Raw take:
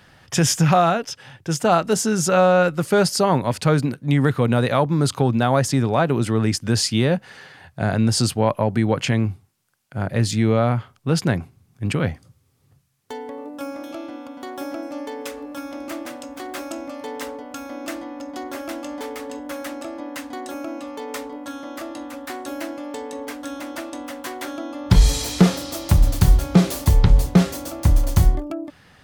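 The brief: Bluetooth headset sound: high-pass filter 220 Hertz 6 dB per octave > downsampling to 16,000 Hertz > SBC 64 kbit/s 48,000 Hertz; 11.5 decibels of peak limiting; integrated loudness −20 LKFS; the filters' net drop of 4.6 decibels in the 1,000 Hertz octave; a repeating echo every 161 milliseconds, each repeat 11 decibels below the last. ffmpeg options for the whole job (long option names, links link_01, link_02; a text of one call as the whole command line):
ffmpeg -i in.wav -af "equalizer=frequency=1000:width_type=o:gain=-6.5,alimiter=limit=-15.5dB:level=0:latency=1,highpass=frequency=220:poles=1,aecho=1:1:161|322|483:0.282|0.0789|0.0221,aresample=16000,aresample=44100,volume=10dB" -ar 48000 -c:a sbc -b:a 64k out.sbc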